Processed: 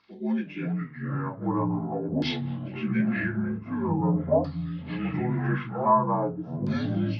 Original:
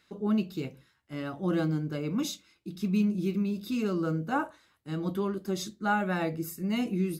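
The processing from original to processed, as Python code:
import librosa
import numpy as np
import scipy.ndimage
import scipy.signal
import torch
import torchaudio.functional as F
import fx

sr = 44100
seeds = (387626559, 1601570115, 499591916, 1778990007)

y = fx.partial_stretch(x, sr, pct=79)
y = fx.echo_pitch(y, sr, ms=315, semitones=-4, count=3, db_per_echo=-3.0)
y = fx.filter_lfo_lowpass(y, sr, shape='saw_down', hz=0.45, low_hz=550.0, high_hz=4600.0, q=4.7)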